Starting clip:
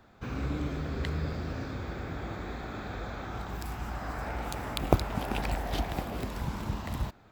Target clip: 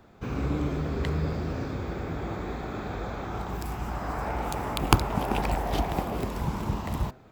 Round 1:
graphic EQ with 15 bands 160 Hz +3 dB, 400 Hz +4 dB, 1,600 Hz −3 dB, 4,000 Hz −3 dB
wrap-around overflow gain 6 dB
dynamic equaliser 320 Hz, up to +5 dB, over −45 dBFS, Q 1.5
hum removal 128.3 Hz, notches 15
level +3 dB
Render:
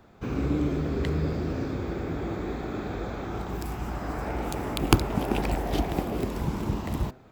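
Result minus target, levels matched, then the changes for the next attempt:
1,000 Hz band −4.0 dB
change: dynamic equaliser 970 Hz, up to +5 dB, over −45 dBFS, Q 1.5

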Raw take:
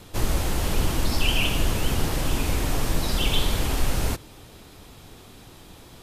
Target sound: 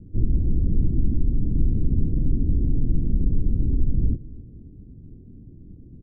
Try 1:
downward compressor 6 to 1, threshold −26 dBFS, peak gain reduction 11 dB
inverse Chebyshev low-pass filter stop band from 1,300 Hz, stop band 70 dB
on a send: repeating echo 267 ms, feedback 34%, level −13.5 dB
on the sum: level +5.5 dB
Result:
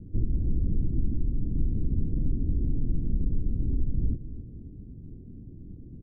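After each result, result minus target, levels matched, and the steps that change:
downward compressor: peak gain reduction +6.5 dB; echo-to-direct +6.5 dB
change: downward compressor 6 to 1, threshold −18 dBFS, peak gain reduction 4 dB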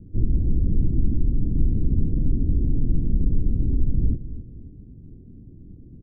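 echo-to-direct +6.5 dB
change: repeating echo 267 ms, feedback 34%, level −20 dB

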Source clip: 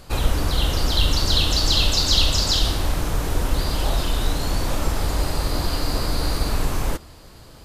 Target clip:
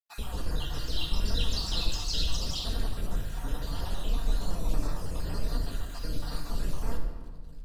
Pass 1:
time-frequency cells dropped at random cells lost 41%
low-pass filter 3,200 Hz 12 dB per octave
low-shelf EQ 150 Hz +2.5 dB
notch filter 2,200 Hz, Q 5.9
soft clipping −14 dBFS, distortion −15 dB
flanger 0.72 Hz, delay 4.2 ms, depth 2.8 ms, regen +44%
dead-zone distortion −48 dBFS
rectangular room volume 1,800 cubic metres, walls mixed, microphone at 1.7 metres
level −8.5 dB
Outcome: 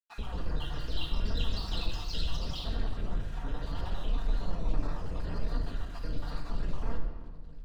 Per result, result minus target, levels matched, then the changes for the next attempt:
soft clipping: distortion +11 dB; 4,000 Hz band −3.5 dB
change: soft clipping −6 dBFS, distortion −26 dB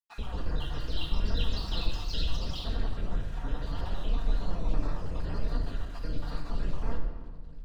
4,000 Hz band −4.0 dB
remove: low-pass filter 3,200 Hz 12 dB per octave

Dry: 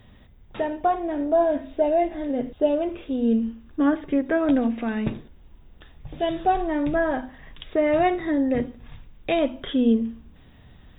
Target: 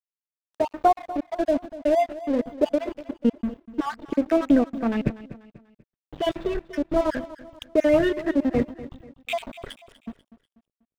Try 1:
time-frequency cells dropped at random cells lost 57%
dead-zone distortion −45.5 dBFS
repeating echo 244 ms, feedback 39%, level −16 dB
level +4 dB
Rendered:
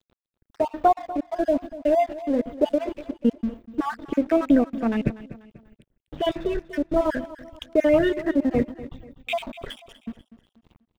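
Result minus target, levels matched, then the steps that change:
dead-zone distortion: distortion −5 dB
change: dead-zone distortion −39.5 dBFS

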